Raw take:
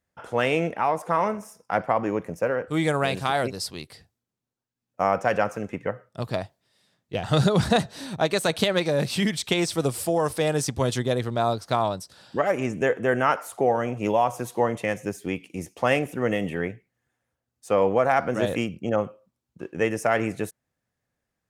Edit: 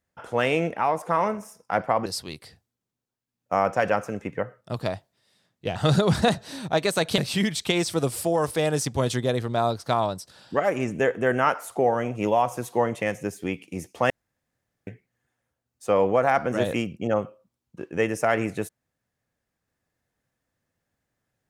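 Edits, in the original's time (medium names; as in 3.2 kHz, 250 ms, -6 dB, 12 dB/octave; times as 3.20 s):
2.06–3.54 s: delete
8.66–9.00 s: delete
15.92–16.69 s: room tone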